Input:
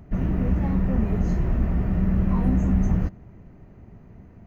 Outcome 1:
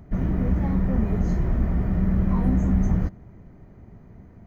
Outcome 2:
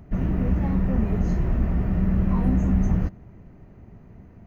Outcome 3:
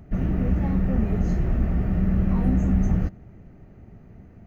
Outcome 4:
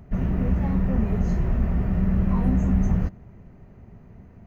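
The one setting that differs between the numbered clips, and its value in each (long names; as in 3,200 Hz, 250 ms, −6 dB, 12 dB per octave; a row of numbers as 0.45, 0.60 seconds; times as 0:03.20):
notch filter, centre frequency: 2,700, 7,900, 1,000, 310 Hertz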